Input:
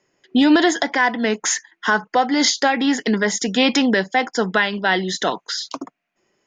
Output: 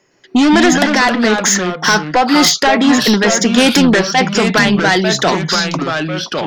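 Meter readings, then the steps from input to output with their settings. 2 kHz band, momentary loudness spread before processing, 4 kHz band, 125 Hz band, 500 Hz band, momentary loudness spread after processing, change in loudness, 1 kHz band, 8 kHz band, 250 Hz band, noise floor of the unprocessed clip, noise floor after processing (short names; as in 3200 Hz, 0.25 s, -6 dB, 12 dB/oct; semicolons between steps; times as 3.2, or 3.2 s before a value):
+6.0 dB, 8 LU, +7.5 dB, n/a, +7.0 dB, 5 LU, +7.0 dB, +6.5 dB, +8.0 dB, +7.0 dB, -77 dBFS, -44 dBFS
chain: sine folder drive 6 dB, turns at -5.5 dBFS; echoes that change speed 0.112 s, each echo -3 st, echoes 2, each echo -6 dB; gain -1 dB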